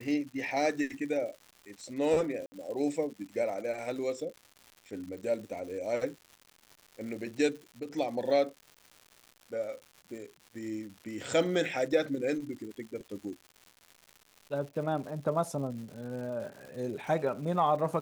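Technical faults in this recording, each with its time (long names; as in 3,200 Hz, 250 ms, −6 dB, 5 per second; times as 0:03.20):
surface crackle 230 per second −42 dBFS
0:02.46–0:02.52: drop-out 60 ms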